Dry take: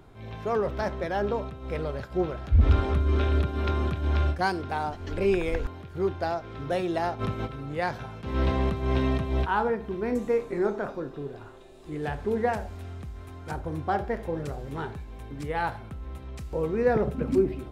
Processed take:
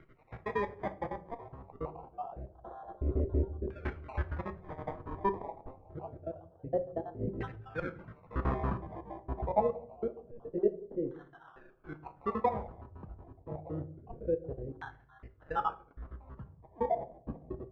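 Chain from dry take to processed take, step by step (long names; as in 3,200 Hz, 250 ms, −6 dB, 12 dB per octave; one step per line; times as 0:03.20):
time-frequency cells dropped at random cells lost 70%
sample-and-hold swept by an LFO 25×, swing 60% 0.25 Hz
auto-filter low-pass saw down 0.27 Hz 400–2,000 Hz
on a send: convolution reverb RT60 0.55 s, pre-delay 6 ms, DRR 9 dB
on the sum: level −6 dB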